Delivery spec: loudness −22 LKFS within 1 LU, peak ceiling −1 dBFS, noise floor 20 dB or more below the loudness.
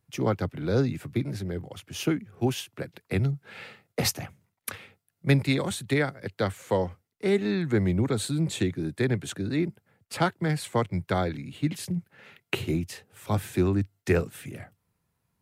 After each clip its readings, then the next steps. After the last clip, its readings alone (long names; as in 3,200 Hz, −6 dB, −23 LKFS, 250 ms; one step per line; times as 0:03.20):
integrated loudness −28.5 LKFS; sample peak −9.0 dBFS; target loudness −22.0 LKFS
→ level +6.5 dB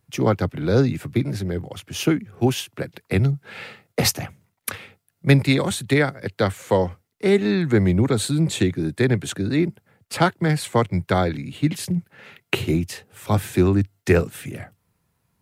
integrated loudness −22.0 LKFS; sample peak −2.5 dBFS; background noise floor −73 dBFS